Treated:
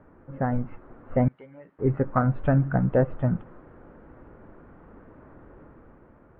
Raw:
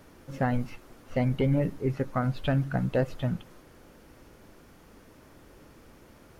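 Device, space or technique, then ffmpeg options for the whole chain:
action camera in a waterproof case: -filter_complex "[0:a]asettb=1/sr,asplit=3[link_01][link_02][link_03];[link_01]atrim=end=1.284[link_04];[link_02]atrim=start=1.28:end=1.79,asetpts=PTS-STARTPTS,afade=type=in:duration=0.004:curve=qsin,afade=type=out:start_time=0.506:duration=0.004:curve=qsin,aderivative[link_05];[link_03]atrim=start=1.786[link_06];[link_04][link_05]acrossfade=duration=0.004:curve1=hsin:curve2=qsin[link_07];[link_07][link_06]acrossfade=duration=0.004:curve1=qsin:curve2=hsin,lowpass=frequency=1600:width=0.5412,lowpass=frequency=1600:width=1.3066,dynaudnorm=framelen=160:gausssize=9:maxgain=5dB" -ar 44100 -c:a aac -b:a 48k

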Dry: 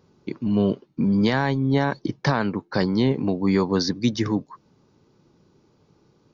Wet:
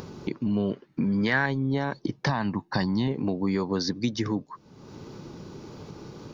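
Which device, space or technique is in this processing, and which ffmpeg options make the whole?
upward and downward compression: -filter_complex "[0:a]asettb=1/sr,asplit=3[link_01][link_02][link_03];[link_01]atrim=end=2.294[link_04];[link_02]atrim=start=2.29:end=3.08,asetpts=PTS-STARTPTS,afade=type=in:duration=0.004:curve=qsin,afade=type=out:start_time=0.786:duration=0.004:curve=qsin,aecho=1:1:1.1:0.65,atrim=end_sample=34839[link_05];[link_03]atrim=start=3.076[link_06];[link_04][link_05]acrossfade=duration=0.004:curve1=hsin:curve2=qsin[link_07];[link_07][link_06]acrossfade=duration=0.004:curve1=qsin:curve2=hsin,acompressor=mode=upward:threshold=-26dB:ratio=2.5,acompressor=threshold=-24dB:ratio=3,asettb=1/sr,asplit=3[link_08][link_09][link_10];[link_08]atrim=end=0.704[link_11];[link_09]atrim=start=0.7:end=1.46,asetpts=PTS-STARTPTS,afade=type=in:duration=0.004:curve=qsin,afade=type=out:start_time=0.756:duration=0.004:curve=qsin,equalizer=frequency=1800:width_type=o:width=0.77:gain=12[link_12];[link_10]atrim=start=1.456[link_13];[link_11][link_12]acrossfade=duration=0.004:curve1=hsin:curve2=qsin[link_14];[link_14][link_13]acrossfade=duration=0.004:curve1=qsin:curve2=hsin"

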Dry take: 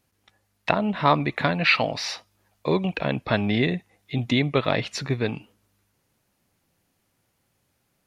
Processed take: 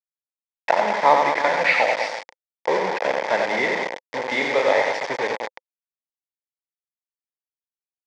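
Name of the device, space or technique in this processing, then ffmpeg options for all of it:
hand-held game console: -filter_complex "[0:a]asettb=1/sr,asplit=3[link_01][link_02][link_03];[link_01]atrim=end=4.274[link_04];[link_02]atrim=start=4.27:end=4.84,asetpts=PTS-STARTPTS,afade=type=in:duration=0.004:curve=qsin,afade=type=out:start_time=0.566:duration=0.004:curve=qsin,asplit=2[link_05][link_06];[link_06]adelay=31,volume=-5dB[link_07];[link_05][link_07]amix=inputs=2:normalize=0,atrim=end_sample=25137[link_08];[link_03]atrim=start=4.836[link_09];[link_04][link_08]acrossfade=duration=0.004:curve1=hsin:curve2=qsin[link_10];[link_10][link_09]acrossfade=duration=0.004:curve1=qsin:curve2=hsin,aecho=1:1:90|198|327.6|483.1|669.7:0.631|0.398|0.251|0.158|0.1,acrusher=bits=3:mix=0:aa=0.000001,highpass=480,equalizer=frequency=520:width_type=q:width=4:gain=9,equalizer=frequency=880:width_type=q:width=4:gain=9,equalizer=frequency=1300:width_type=q:width=4:gain=-7,equalizer=frequency=2000:width_type=q:width=4:gain=8,equalizer=frequency=2800:width_type=q:width=4:gain=-9,equalizer=frequency=4000:width_type=q:width=4:gain=-8,lowpass=frequency=4800:width=0.5412,lowpass=frequency=4800:width=1.3066"

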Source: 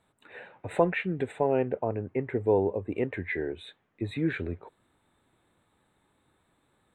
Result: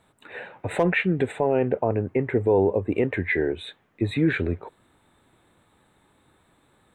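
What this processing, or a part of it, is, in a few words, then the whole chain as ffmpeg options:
clipper into limiter: -af "asoftclip=type=hard:threshold=-13dB,alimiter=limit=-20dB:level=0:latency=1:release=17,volume=8dB"

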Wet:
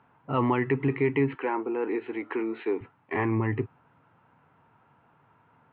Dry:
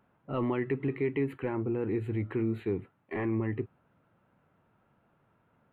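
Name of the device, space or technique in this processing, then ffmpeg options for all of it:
guitar cabinet: -filter_complex "[0:a]highpass=100,equalizer=frequency=200:width_type=q:width=4:gain=-8,equalizer=frequency=350:width_type=q:width=4:gain=-5,equalizer=frequency=580:width_type=q:width=4:gain=-7,equalizer=frequency=930:width_type=q:width=4:gain=6,lowpass=frequency=3500:width=0.5412,lowpass=frequency=3500:width=1.3066,asettb=1/sr,asplit=3[link_01][link_02][link_03];[link_01]atrim=end=1.354[link_04];[link_02]atrim=start=1.35:end=2.81,asetpts=PTS-STARTPTS,afade=type=in:duration=0.004:curve=qsin,afade=type=out:start_time=1.456:duration=0.004:curve=qsin,highpass=frequency=290:width=0.5412,highpass=frequency=290:width=1.3066[link_05];[link_03]atrim=start=2.806[link_06];[link_04][link_05]acrossfade=duration=0.004:curve1=hsin:curve2=qsin[link_07];[link_07][link_06]acrossfade=duration=0.004:curve1=qsin:curve2=hsin,volume=8dB"

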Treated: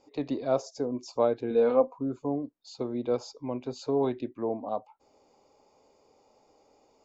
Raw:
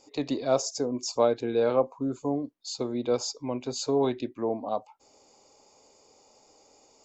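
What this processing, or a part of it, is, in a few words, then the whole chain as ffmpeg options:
through cloth: -filter_complex "[0:a]asettb=1/sr,asplit=3[link_01][link_02][link_03];[link_01]atrim=end=1.504[link_04];[link_02]atrim=start=1.5:end=1.97,asetpts=PTS-STARTPTS,afade=type=in:duration=0.004:curve=qsin,afade=type=out:start_time=0.466:duration=0.004:curve=qsin,aecho=1:1:4.1:0.67,atrim=end_sample=20727[link_05];[link_03]atrim=start=1.966[link_06];[link_04][link_05]acrossfade=duration=0.004:curve1=hsin:curve2=qsin[link_07];[link_07][link_06]acrossfade=duration=0.004:curve1=qsin:curve2=hsin,lowpass=6400,highshelf=frequency=3100:gain=-12,volume=-1.5dB"

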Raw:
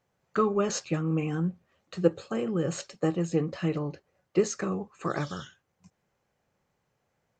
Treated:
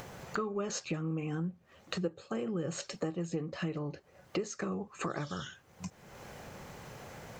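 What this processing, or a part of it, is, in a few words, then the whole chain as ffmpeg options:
upward and downward compression: -af "acompressor=mode=upward:threshold=-30dB:ratio=2.5,acompressor=threshold=-37dB:ratio=4,volume=3dB"

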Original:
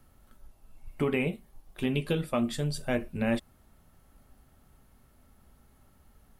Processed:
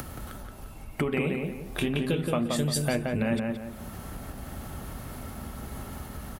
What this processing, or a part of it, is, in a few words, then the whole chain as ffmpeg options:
upward and downward compression: -filter_complex "[0:a]acompressor=mode=upward:threshold=-30dB:ratio=2.5,acompressor=threshold=-32dB:ratio=5,highpass=43,asettb=1/sr,asplit=3[link_01][link_02][link_03];[link_01]atrim=end=1.214[link_04];[link_02]atrim=start=1.21:end=1.88,asetpts=PTS-STARTPTS,afade=type=in:duration=0.004:curve=qsin,afade=type=out:start_time=0.666:duration=0.004:curve=qsin,asplit=2[link_05][link_06];[link_06]adelay=26,volume=-6.5dB[link_07];[link_05][link_07]amix=inputs=2:normalize=0,atrim=end_sample=29547[link_08];[link_03]atrim=start=1.876[link_09];[link_04][link_08]acrossfade=duration=0.004:curve1=hsin:curve2=qsin[link_10];[link_10][link_09]acrossfade=duration=0.004:curve1=qsin:curve2=hsin,asettb=1/sr,asplit=3[link_11][link_12][link_13];[link_11]atrim=end=2.564[link_14];[link_12]atrim=start=2.56:end=2.96,asetpts=PTS-STARTPTS,afade=type=in:duration=0.004:curve=qsin,afade=type=out:start_time=0.396:duration=0.004:curve=qsin,highshelf=frequency=6000:gain=11[link_15];[link_13]atrim=start=2.956[link_16];[link_14][link_15]acrossfade=duration=0.004:curve1=hsin:curve2=qsin[link_17];[link_17][link_16]acrossfade=duration=0.004:curve1=qsin:curve2=hsin,asplit=2[link_18][link_19];[link_19]adelay=174,lowpass=frequency=2300:poles=1,volume=-3dB,asplit=2[link_20][link_21];[link_21]adelay=174,lowpass=frequency=2300:poles=1,volume=0.39,asplit=2[link_22][link_23];[link_23]adelay=174,lowpass=frequency=2300:poles=1,volume=0.39,asplit=2[link_24][link_25];[link_25]adelay=174,lowpass=frequency=2300:poles=1,volume=0.39,asplit=2[link_26][link_27];[link_27]adelay=174,lowpass=frequency=2300:poles=1,volume=0.39[link_28];[link_18][link_20][link_22][link_24][link_26][link_28]amix=inputs=6:normalize=0,volume=7dB"

